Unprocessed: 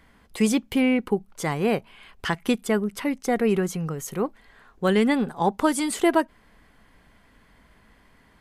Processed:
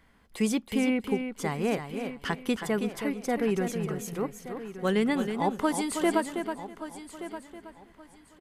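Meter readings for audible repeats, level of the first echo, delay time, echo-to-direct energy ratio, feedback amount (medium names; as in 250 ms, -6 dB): 6, -7.5 dB, 322 ms, -6.0 dB, no regular repeats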